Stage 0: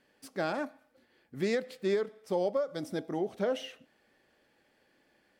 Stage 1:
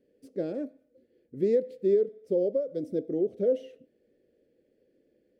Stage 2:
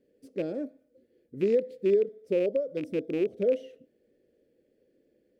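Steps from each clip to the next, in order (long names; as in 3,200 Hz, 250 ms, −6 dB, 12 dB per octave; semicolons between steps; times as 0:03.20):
drawn EQ curve 180 Hz 0 dB, 500 Hz +8 dB, 920 Hz −27 dB, 2,000 Hz −15 dB
loose part that buzzes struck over −35 dBFS, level −33 dBFS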